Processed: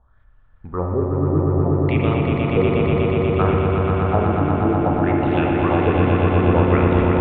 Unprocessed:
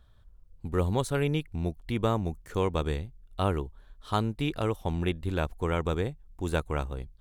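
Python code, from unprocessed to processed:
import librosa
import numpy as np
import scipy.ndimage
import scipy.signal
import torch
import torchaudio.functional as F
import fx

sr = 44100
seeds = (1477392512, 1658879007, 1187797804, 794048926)

y = fx.env_lowpass_down(x, sr, base_hz=2400.0, full_db=-23.5)
y = fx.rider(y, sr, range_db=10, speed_s=0.5)
y = fx.filter_lfo_lowpass(y, sr, shape='sine', hz=0.61, low_hz=240.0, high_hz=2900.0, q=4.4)
y = fx.echo_swell(y, sr, ms=121, loudest=5, wet_db=-5)
y = fx.rev_spring(y, sr, rt60_s=2.0, pass_ms=(33, 50), chirp_ms=60, drr_db=1.5)
y = F.gain(torch.from_numpy(y), 1.5).numpy()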